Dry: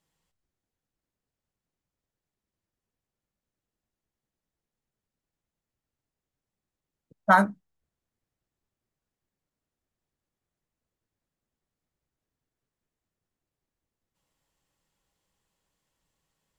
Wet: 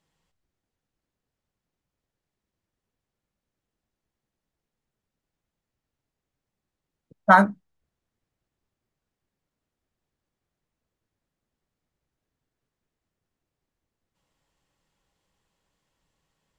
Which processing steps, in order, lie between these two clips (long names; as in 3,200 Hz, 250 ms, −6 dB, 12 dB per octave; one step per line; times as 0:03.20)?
high-shelf EQ 9,100 Hz −12 dB
level +4 dB